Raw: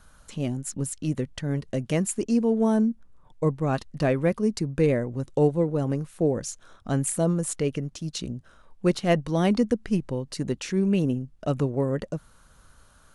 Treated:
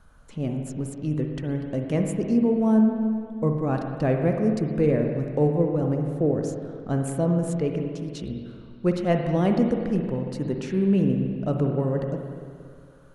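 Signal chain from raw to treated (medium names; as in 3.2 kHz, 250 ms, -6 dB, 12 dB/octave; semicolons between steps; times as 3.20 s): treble shelf 2.4 kHz -11.5 dB; spring tank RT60 2.2 s, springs 46/59 ms, chirp 70 ms, DRR 3 dB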